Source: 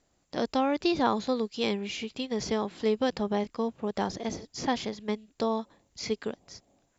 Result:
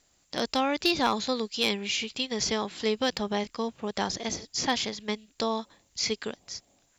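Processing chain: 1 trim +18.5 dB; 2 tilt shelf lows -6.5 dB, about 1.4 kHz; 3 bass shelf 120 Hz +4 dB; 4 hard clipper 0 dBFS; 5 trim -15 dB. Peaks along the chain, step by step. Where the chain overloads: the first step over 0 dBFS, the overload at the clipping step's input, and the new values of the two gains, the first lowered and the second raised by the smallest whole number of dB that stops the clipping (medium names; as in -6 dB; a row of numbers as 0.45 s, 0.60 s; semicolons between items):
+7.5 dBFS, +5.5 dBFS, +5.5 dBFS, 0.0 dBFS, -15.0 dBFS; step 1, 5.5 dB; step 1 +12.5 dB, step 5 -9 dB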